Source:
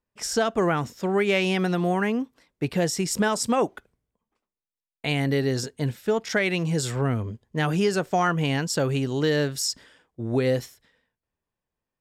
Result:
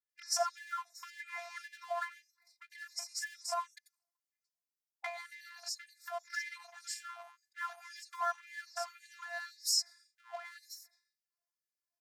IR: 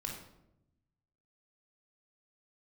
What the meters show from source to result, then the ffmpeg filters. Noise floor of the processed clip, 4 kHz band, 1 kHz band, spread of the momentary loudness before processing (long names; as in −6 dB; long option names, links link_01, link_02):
below −85 dBFS, −8.5 dB, −11.0 dB, 7 LU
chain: -filter_complex "[0:a]asuperstop=centerf=3100:order=4:qfactor=0.75,highshelf=frequency=5500:width_type=q:width=1.5:gain=-11,acrossover=split=3000[link_01][link_02];[link_02]adelay=90[link_03];[link_01][link_03]amix=inputs=2:normalize=0,acrossover=split=490|2600[link_04][link_05][link_06];[link_05]aeval=exprs='sgn(val(0))*max(abs(val(0))-0.0075,0)':channel_layout=same[link_07];[link_04][link_07][link_06]amix=inputs=3:normalize=0,acompressor=threshold=-35dB:ratio=12,asubboost=boost=6.5:cutoff=180,afftfilt=real='hypot(re,im)*cos(PI*b)':imag='0':win_size=512:overlap=0.75,afftfilt=real='re*gte(b*sr/1024,630*pow(1700/630,0.5+0.5*sin(2*PI*1.9*pts/sr)))':imag='im*gte(b*sr/1024,630*pow(1700/630,0.5+0.5*sin(2*PI*1.9*pts/sr)))':win_size=1024:overlap=0.75,volume=14dB"